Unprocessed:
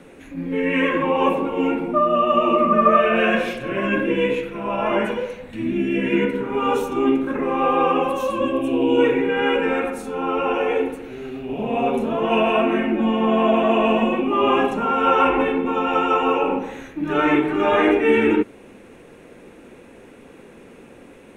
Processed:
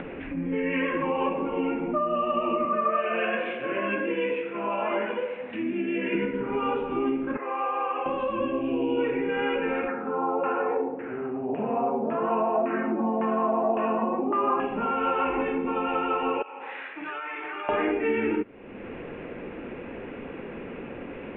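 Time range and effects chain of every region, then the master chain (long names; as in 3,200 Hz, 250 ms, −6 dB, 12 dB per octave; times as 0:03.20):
0:02.65–0:06.15: high-pass filter 290 Hz + double-tracking delay 24 ms −10.5 dB
0:07.37–0:08.06: high-pass filter 720 Hz + high-frequency loss of the air 350 metres
0:09.88–0:14.60: high-pass filter 130 Hz + auto-filter low-pass saw down 1.8 Hz 710–1,800 Hz
0:16.42–0:17.69: high-pass filter 960 Hz + downward compressor 12 to 1, threshold −33 dBFS
whole clip: upward compression, threshold −29 dBFS; Butterworth low-pass 3,000 Hz 48 dB per octave; downward compressor 2.5 to 1, threshold −27 dBFS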